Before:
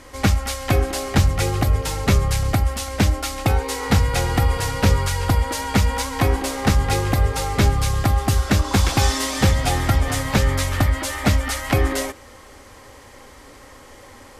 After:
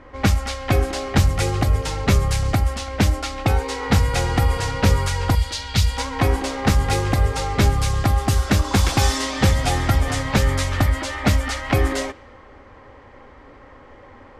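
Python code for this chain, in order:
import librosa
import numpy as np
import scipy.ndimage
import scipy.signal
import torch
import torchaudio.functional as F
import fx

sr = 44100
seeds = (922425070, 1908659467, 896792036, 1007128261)

y = fx.env_lowpass(x, sr, base_hz=1800.0, full_db=-13.0)
y = fx.graphic_eq(y, sr, hz=(125, 250, 500, 1000, 2000, 4000), db=(4, -12, -7, -8, -4, 8), at=(5.35, 5.98))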